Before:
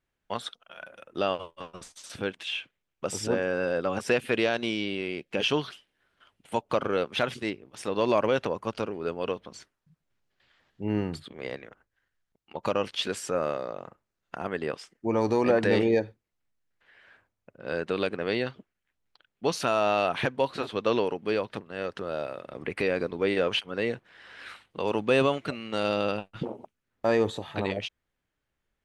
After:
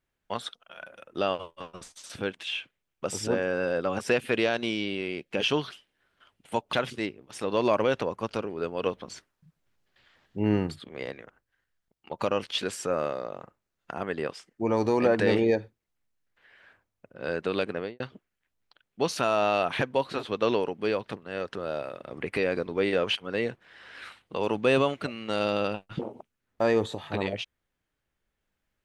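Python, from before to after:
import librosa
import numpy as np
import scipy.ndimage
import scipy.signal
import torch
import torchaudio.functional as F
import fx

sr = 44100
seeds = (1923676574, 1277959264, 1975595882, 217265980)

y = fx.studio_fade_out(x, sr, start_s=18.17, length_s=0.27)
y = fx.edit(y, sr, fx.cut(start_s=6.73, length_s=0.44),
    fx.clip_gain(start_s=9.3, length_s=1.81, db=3.5), tone=tone)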